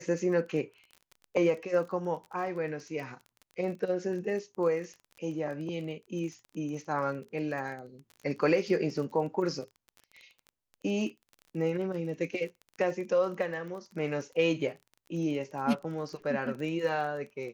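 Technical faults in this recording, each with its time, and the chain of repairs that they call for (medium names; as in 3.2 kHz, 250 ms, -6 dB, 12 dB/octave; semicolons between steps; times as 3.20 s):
crackle 24 per s -39 dBFS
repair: de-click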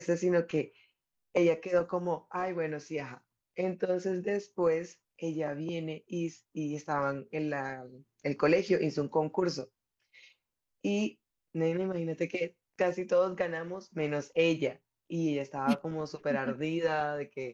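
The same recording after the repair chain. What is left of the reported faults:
nothing left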